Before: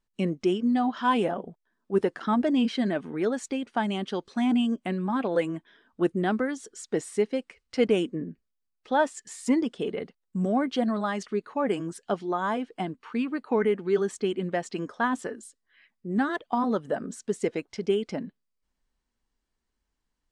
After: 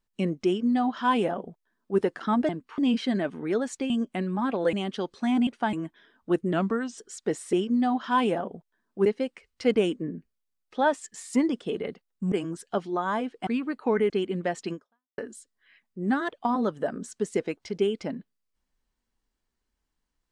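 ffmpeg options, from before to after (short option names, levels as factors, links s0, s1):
-filter_complex "[0:a]asplit=15[s0][s1][s2][s3][s4][s5][s6][s7][s8][s9][s10][s11][s12][s13][s14];[s0]atrim=end=2.492[s15];[s1]atrim=start=12.828:end=13.122[s16];[s2]atrim=start=2.488:end=3.612[s17];[s3]atrim=start=4.608:end=5.442[s18];[s4]atrim=start=3.868:end=4.612[s19];[s5]atrim=start=3.608:end=3.872[s20];[s6]atrim=start=5.438:end=6.244[s21];[s7]atrim=start=6.24:end=6.64,asetpts=PTS-STARTPTS,asetrate=39249,aresample=44100,atrim=end_sample=19820,asetpts=PTS-STARTPTS[s22];[s8]atrim=start=6.636:end=7.192[s23];[s9]atrim=start=0.458:end=1.992[s24];[s10]atrim=start=7.188:end=10.452[s25];[s11]atrim=start=11.678:end=12.832[s26];[s12]atrim=start=13.118:end=13.752[s27];[s13]atrim=start=14.178:end=15.26,asetpts=PTS-STARTPTS,afade=t=out:st=0.632:d=0.45:c=exp[s28];[s14]atrim=start=15.26,asetpts=PTS-STARTPTS,afade=t=in:d=0.004:c=hsin[s29];[s15][s16]acrossfade=d=0.004:c1=hsin:c2=hsin[s30];[s30][s17]acrossfade=d=0.004:c1=hsin:c2=hsin[s31];[s31][s18]acrossfade=d=0.004:c1=hsin:c2=hsin[s32];[s32][s19]acrossfade=d=0.004:c1=hsin:c2=hsin[s33];[s33][s20]acrossfade=d=0.004:c1=hsin:c2=hsin[s34];[s34][s21]acrossfade=d=0.004:c1=hsin:c2=hsin[s35];[s35][s22]acrossfade=d=0.004:c1=hsin:c2=hsin[s36];[s36][s23]acrossfade=d=0.004:c1=hsin:c2=hsin[s37];[s37][s24]acrossfade=d=0.004:c1=hsin:c2=hsin[s38];[s38][s25]acrossfade=d=0.004:c1=hsin:c2=hsin[s39];[s39][s26]acrossfade=d=0.004:c1=hsin:c2=hsin[s40];[s40][s27]acrossfade=d=0.004:c1=hsin:c2=hsin[s41];[s28][s29]concat=n=2:v=0:a=1[s42];[s41][s42]acrossfade=d=0.004:c1=hsin:c2=hsin"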